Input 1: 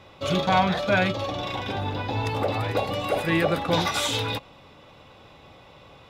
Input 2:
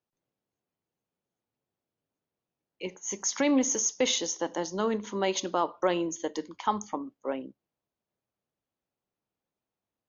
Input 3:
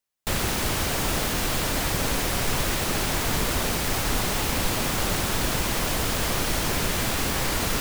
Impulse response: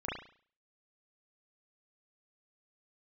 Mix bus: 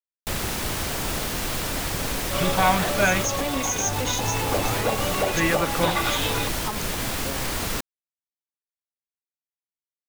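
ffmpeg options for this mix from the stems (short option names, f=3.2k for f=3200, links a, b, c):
-filter_complex "[0:a]lowpass=2.7k,tiltshelf=f=970:g=-3.5,adelay=2100,volume=1.5dB[a];[1:a]highshelf=f=4.6k:g=11,volume=-6dB,asplit=2[b][c];[2:a]volume=-2.5dB[d];[c]apad=whole_len=344232[e];[d][e]sidechaincompress=threshold=-31dB:ratio=8:attack=16:release=209[f];[a][b][f]amix=inputs=3:normalize=0,acrusher=bits=4:mix=0:aa=0.5"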